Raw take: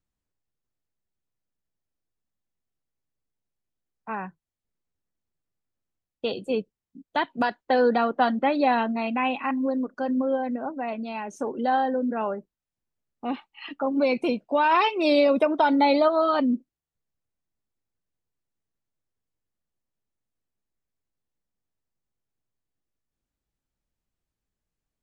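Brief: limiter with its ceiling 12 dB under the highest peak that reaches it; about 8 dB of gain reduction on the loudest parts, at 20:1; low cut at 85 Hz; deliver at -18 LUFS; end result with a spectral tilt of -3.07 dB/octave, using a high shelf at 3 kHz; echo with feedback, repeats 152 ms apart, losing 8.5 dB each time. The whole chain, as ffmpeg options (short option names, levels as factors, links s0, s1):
-af "highpass=85,highshelf=f=3000:g=4,acompressor=threshold=0.0708:ratio=20,alimiter=level_in=1.06:limit=0.0631:level=0:latency=1,volume=0.944,aecho=1:1:152|304|456|608:0.376|0.143|0.0543|0.0206,volume=5.31"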